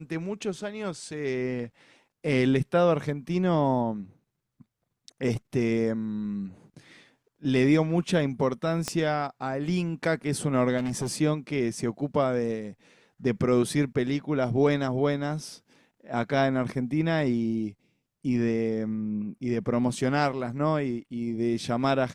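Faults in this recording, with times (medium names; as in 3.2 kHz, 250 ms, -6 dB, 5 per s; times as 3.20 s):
8.88 s: pop -14 dBFS
10.77–11.16 s: clipped -25 dBFS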